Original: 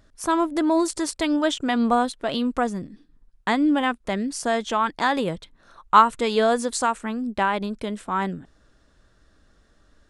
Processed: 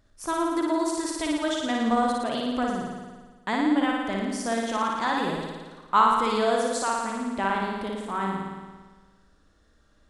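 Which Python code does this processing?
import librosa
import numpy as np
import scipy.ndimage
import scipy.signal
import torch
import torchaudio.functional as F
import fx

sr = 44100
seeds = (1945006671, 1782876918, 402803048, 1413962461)

y = fx.room_flutter(x, sr, wall_m=9.7, rt60_s=1.4)
y = y * librosa.db_to_amplitude(-6.5)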